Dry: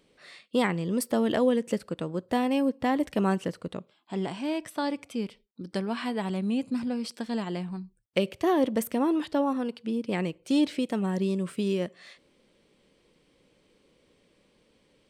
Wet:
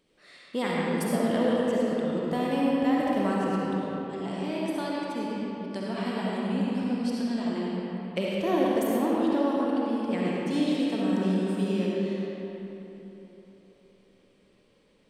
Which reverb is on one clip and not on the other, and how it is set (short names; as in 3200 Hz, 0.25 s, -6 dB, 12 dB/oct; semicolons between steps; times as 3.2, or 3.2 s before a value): digital reverb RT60 3.6 s, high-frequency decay 0.6×, pre-delay 25 ms, DRR -5.5 dB; gain -5.5 dB